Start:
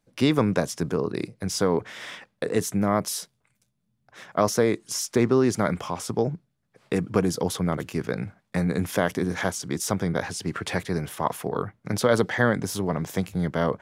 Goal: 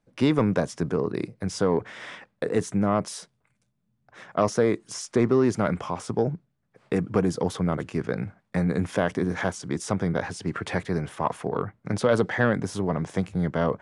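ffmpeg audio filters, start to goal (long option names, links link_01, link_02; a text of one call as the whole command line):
ffmpeg -i in.wav -filter_complex "[0:a]acrossover=split=2400[link_01][link_02];[link_01]acontrast=83[link_03];[link_03][link_02]amix=inputs=2:normalize=0,aresample=22050,aresample=44100,volume=-6.5dB" out.wav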